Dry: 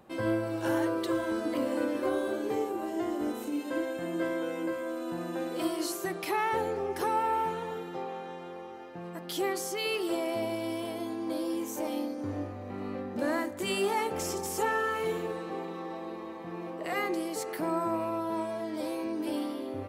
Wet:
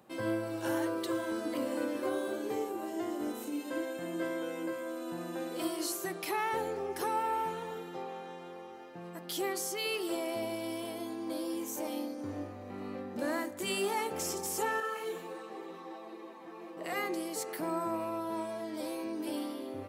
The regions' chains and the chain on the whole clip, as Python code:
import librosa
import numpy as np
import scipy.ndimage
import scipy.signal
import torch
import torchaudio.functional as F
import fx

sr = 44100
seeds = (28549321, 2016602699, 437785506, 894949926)

y = fx.chain(x, sr, fx.highpass(hz=230.0, slope=12),
    fx.ensemble(), at=(14.8, 16.77))
y = scipy.signal.sosfilt(scipy.signal.butter(2, 97.0, 'highpass', fs=sr, output='sos'), y)
y = fx.high_shelf(y, sr, hz=4300.0, db=6.0)
y = F.gain(torch.from_numpy(y), -4.0).numpy()